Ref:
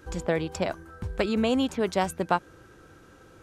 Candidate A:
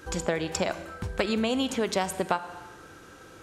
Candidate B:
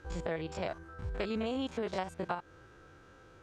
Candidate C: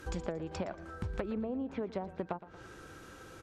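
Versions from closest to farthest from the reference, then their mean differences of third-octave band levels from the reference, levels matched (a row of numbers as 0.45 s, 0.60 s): B, A, C; 4.0 dB, 5.5 dB, 9.0 dB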